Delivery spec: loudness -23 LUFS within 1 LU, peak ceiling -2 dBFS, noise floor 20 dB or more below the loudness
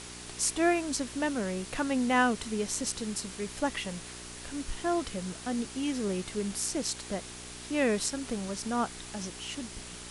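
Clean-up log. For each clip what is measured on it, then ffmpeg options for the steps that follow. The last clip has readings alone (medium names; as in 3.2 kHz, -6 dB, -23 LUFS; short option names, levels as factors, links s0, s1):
hum 60 Hz; highest harmonic 420 Hz; hum level -48 dBFS; noise floor -44 dBFS; noise floor target -52 dBFS; loudness -32.0 LUFS; peak level -13.0 dBFS; loudness target -23.0 LUFS
-> -af "bandreject=f=60:t=h:w=4,bandreject=f=120:t=h:w=4,bandreject=f=180:t=h:w=4,bandreject=f=240:t=h:w=4,bandreject=f=300:t=h:w=4,bandreject=f=360:t=h:w=4,bandreject=f=420:t=h:w=4"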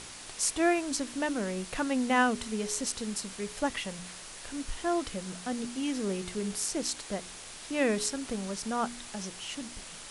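hum not found; noise floor -46 dBFS; noise floor target -52 dBFS
-> -af "afftdn=nr=6:nf=-46"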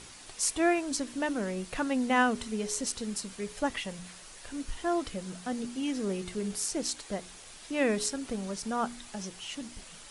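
noise floor -49 dBFS; noise floor target -52 dBFS
-> -af "afftdn=nr=6:nf=-49"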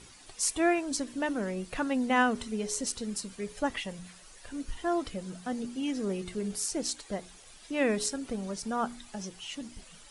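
noise floor -53 dBFS; loudness -32.0 LUFS; peak level -13.0 dBFS; loudness target -23.0 LUFS
-> -af "volume=2.82"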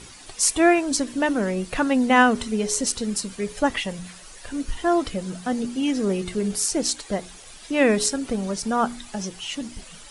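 loudness -23.0 LUFS; peak level -4.0 dBFS; noise floor -44 dBFS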